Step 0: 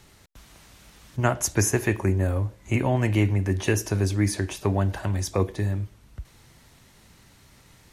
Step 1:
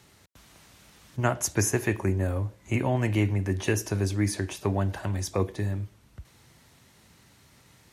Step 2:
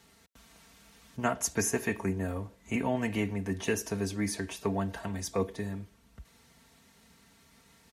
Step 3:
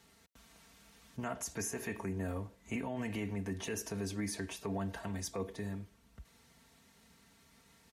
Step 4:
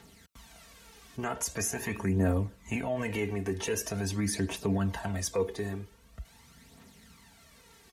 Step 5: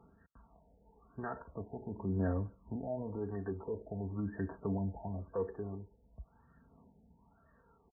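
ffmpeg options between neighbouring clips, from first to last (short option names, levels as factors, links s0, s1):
-af "highpass=72,volume=0.75"
-af "aecho=1:1:4.4:0.68,volume=0.596"
-af "alimiter=level_in=1.19:limit=0.0631:level=0:latency=1:release=51,volume=0.841,volume=0.668"
-af "aphaser=in_gain=1:out_gain=1:delay=2.8:decay=0.52:speed=0.44:type=triangular,volume=2"
-af "aresample=32000,aresample=44100,afftfilt=real='re*lt(b*sr/1024,890*pow(1900/890,0.5+0.5*sin(2*PI*0.96*pts/sr)))':imag='im*lt(b*sr/1024,890*pow(1900/890,0.5+0.5*sin(2*PI*0.96*pts/sr)))':win_size=1024:overlap=0.75,volume=0.473"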